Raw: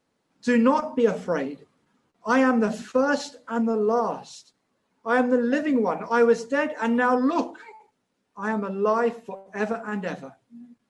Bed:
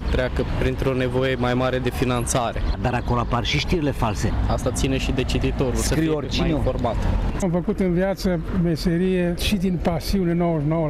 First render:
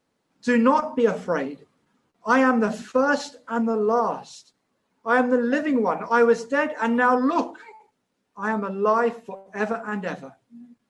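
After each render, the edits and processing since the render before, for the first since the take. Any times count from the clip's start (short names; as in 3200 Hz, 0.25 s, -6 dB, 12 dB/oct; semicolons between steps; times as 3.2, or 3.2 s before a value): dynamic EQ 1200 Hz, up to +4 dB, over -35 dBFS, Q 0.99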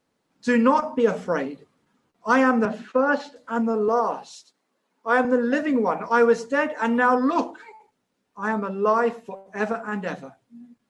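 2.65–3.36 three-band isolator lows -21 dB, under 150 Hz, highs -16 dB, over 3500 Hz; 3.88–5.25 HPF 240 Hz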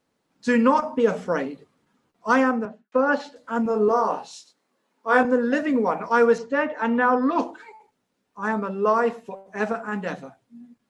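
2.31–2.92 studio fade out; 3.63–5.23 doubler 24 ms -4.5 dB; 6.38–7.4 air absorption 150 m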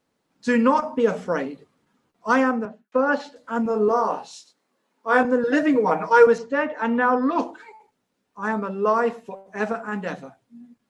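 5.43–6.27 comb 6.4 ms, depth 99%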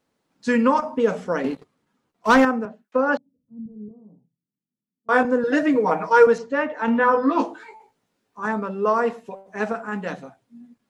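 1.44–2.45 sample leveller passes 2; 3.17–5.09 ladder low-pass 210 Hz, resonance 30%; 6.86–8.46 doubler 18 ms -2 dB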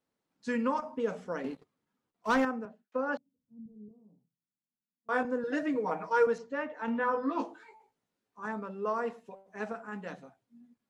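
gain -12 dB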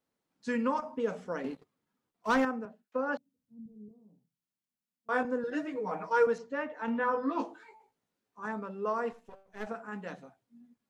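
5.5–5.94 ensemble effect; 9.12–9.67 half-wave gain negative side -12 dB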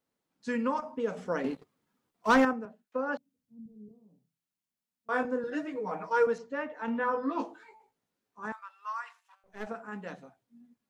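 1.17–2.53 gain +4.5 dB; 3.84–5.53 doubler 31 ms -11.5 dB; 8.52–9.44 steep high-pass 990 Hz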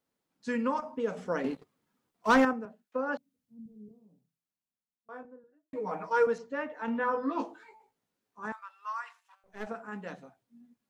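3.82–5.73 studio fade out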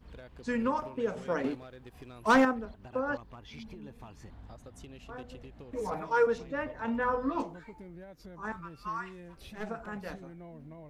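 add bed -27.5 dB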